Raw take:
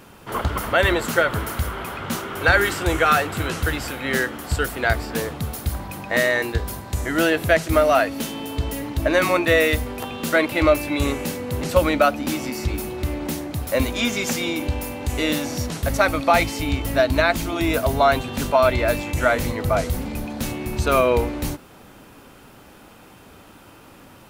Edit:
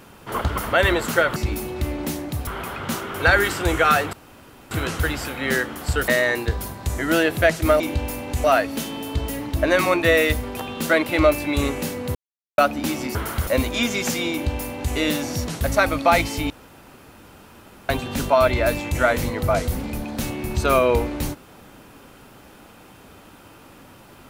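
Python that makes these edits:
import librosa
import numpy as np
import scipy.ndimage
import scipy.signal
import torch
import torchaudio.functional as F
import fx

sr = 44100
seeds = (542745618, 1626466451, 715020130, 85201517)

y = fx.edit(x, sr, fx.swap(start_s=1.36, length_s=0.32, other_s=12.58, other_length_s=1.11),
    fx.insert_room_tone(at_s=3.34, length_s=0.58),
    fx.cut(start_s=4.71, length_s=1.44),
    fx.silence(start_s=11.58, length_s=0.43),
    fx.duplicate(start_s=14.53, length_s=0.64, to_s=7.87),
    fx.room_tone_fill(start_s=16.72, length_s=1.39), tone=tone)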